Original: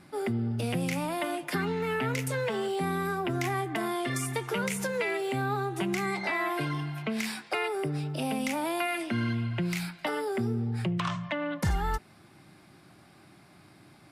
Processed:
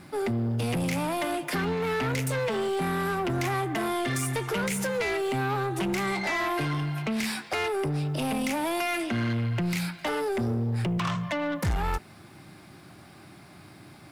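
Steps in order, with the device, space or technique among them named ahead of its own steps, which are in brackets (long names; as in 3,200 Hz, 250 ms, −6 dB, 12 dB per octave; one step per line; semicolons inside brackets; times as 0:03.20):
open-reel tape (soft clipping −30 dBFS, distortion −12 dB; parametric band 85 Hz +3 dB; white noise bed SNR 44 dB)
level +6 dB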